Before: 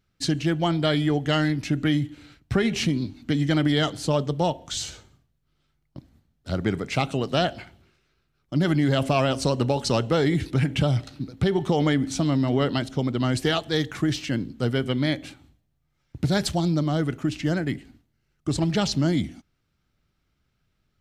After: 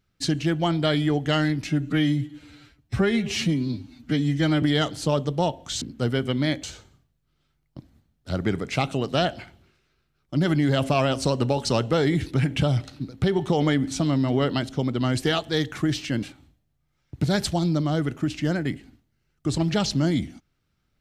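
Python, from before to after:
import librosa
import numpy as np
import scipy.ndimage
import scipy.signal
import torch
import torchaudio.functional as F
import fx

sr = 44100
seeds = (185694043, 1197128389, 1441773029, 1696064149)

y = fx.edit(x, sr, fx.stretch_span(start_s=1.67, length_s=1.97, factor=1.5),
    fx.move(start_s=14.42, length_s=0.82, to_s=4.83), tone=tone)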